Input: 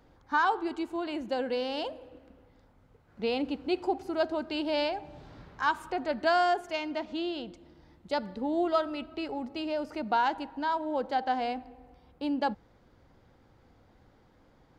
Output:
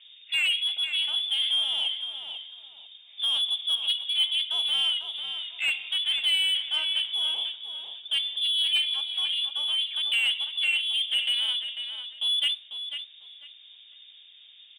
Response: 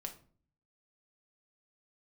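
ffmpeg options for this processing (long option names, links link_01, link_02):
-filter_complex "[0:a]equalizer=frequency=2400:width=0.86:gain=-14,lowpass=frequency=3100:width_type=q:width=0.5098,lowpass=frequency=3100:width_type=q:width=0.6013,lowpass=frequency=3100:width_type=q:width=0.9,lowpass=frequency=3100:width_type=q:width=2.563,afreqshift=-3700,asplit=2[link_01][link_02];[link_02]highpass=frequency=720:poles=1,volume=16dB,asoftclip=type=tanh:threshold=-18.5dB[link_03];[link_01][link_03]amix=inputs=2:normalize=0,lowpass=frequency=2600:poles=1,volume=-6dB,asplit=2[link_04][link_05];[link_05]adelay=496,lowpass=frequency=2900:poles=1,volume=-6.5dB,asplit=2[link_06][link_07];[link_07]adelay=496,lowpass=frequency=2900:poles=1,volume=0.3,asplit=2[link_08][link_09];[link_09]adelay=496,lowpass=frequency=2900:poles=1,volume=0.3,asplit=2[link_10][link_11];[link_11]adelay=496,lowpass=frequency=2900:poles=1,volume=0.3[link_12];[link_04][link_06][link_08][link_10][link_12]amix=inputs=5:normalize=0,asplit=2[link_13][link_14];[1:a]atrim=start_sample=2205[link_15];[link_14][link_15]afir=irnorm=-1:irlink=0,volume=-3.5dB[link_16];[link_13][link_16]amix=inputs=2:normalize=0"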